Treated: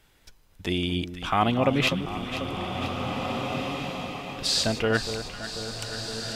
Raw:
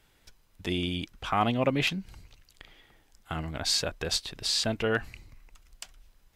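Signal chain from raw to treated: echo whose repeats swap between lows and highs 247 ms, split 1.2 kHz, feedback 79%, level -9 dB; spectral freeze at 3.10 s, 1.28 s; swelling reverb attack 1970 ms, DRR 5 dB; trim +3 dB

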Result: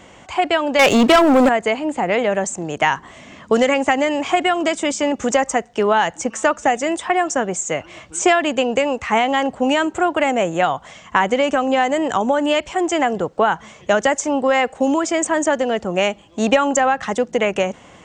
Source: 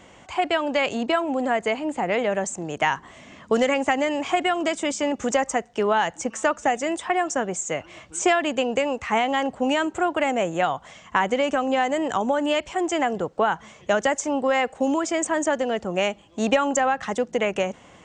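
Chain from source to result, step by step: 0.79–1.49 s: waveshaping leveller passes 3; trim +5 dB

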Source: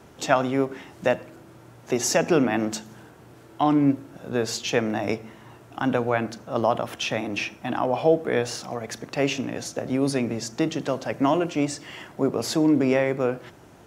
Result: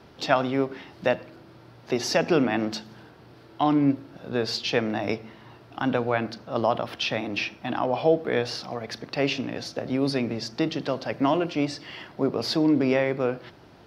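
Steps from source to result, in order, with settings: resonant high shelf 5.8 kHz -7.5 dB, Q 3; trim -1.5 dB

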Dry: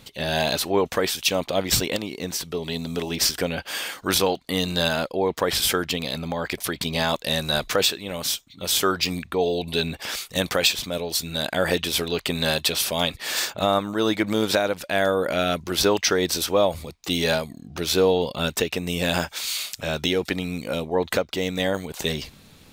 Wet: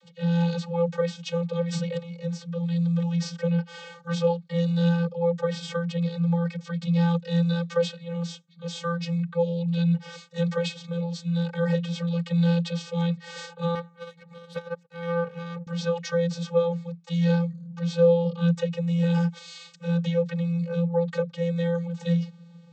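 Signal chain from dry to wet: vocoder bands 32, square 170 Hz; 13.75–15.67 s: power-law waveshaper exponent 2

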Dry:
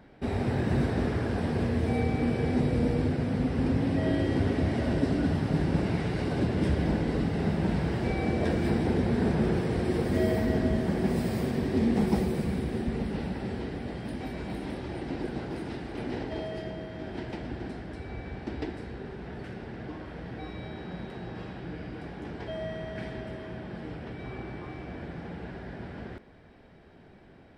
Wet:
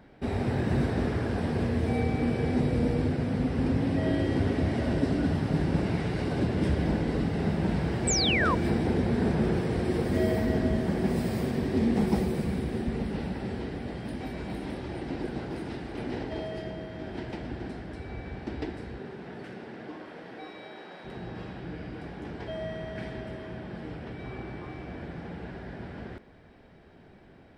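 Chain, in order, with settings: 8.07–8.55 s: painted sound fall 920–8500 Hz -27 dBFS; 18.98–21.04 s: high-pass 120 Hz -> 500 Hz 12 dB/octave

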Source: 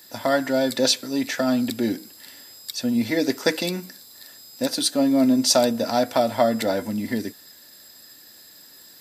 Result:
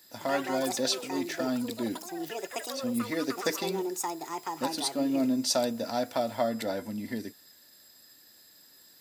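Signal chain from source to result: ever faster or slower copies 111 ms, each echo +6 st, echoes 3, each echo -6 dB; trim -9 dB

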